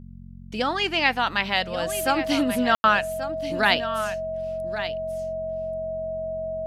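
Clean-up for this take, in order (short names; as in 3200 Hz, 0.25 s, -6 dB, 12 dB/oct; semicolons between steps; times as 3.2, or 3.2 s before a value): de-hum 45.2 Hz, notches 5; notch 640 Hz, Q 30; room tone fill 2.75–2.84; inverse comb 1.133 s -11.5 dB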